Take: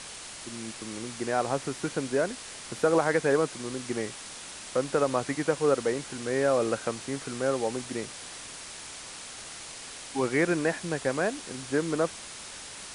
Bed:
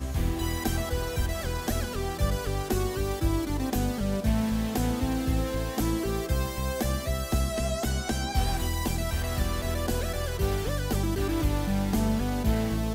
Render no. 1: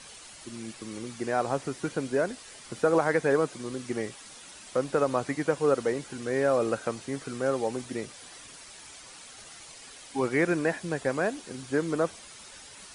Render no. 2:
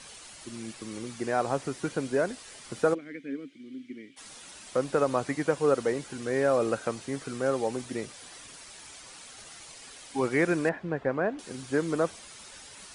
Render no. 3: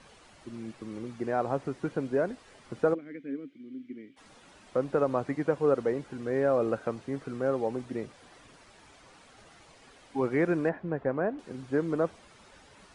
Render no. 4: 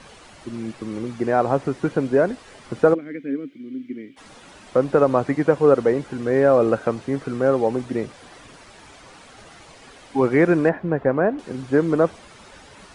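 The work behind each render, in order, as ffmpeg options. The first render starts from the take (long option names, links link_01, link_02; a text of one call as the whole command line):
ffmpeg -i in.wav -af "afftdn=noise_reduction=9:noise_floor=-43" out.wav
ffmpeg -i in.wav -filter_complex "[0:a]asplit=3[link_01][link_02][link_03];[link_01]afade=type=out:start_time=2.93:duration=0.02[link_04];[link_02]asplit=3[link_05][link_06][link_07];[link_05]bandpass=frequency=270:width_type=q:width=8,volume=0dB[link_08];[link_06]bandpass=frequency=2290:width_type=q:width=8,volume=-6dB[link_09];[link_07]bandpass=frequency=3010:width_type=q:width=8,volume=-9dB[link_10];[link_08][link_09][link_10]amix=inputs=3:normalize=0,afade=type=in:start_time=2.93:duration=0.02,afade=type=out:start_time=4.16:duration=0.02[link_11];[link_03]afade=type=in:start_time=4.16:duration=0.02[link_12];[link_04][link_11][link_12]amix=inputs=3:normalize=0,asettb=1/sr,asplit=3[link_13][link_14][link_15];[link_13]atrim=end=10.694[link_16];[link_14]atrim=start=10.69:end=11.39,asetpts=PTS-STARTPTS,afade=type=in:duration=0.004:curve=qsin,afade=type=out:start_time=0.696:duration=0.004:curve=qsin,lowpass=1800[link_17];[link_15]atrim=start=11.386[link_18];[link_16][link_17]acrossfade=duration=0.004:curve1=hsin:curve2=qsin[link_19];[link_19][link_18]acrossfade=duration=0.004:curve1=qsin:curve2=hsin" out.wav
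ffmpeg -i in.wav -af "lowpass=frequency=1100:poles=1" out.wav
ffmpeg -i in.wav -af "volume=10dB" out.wav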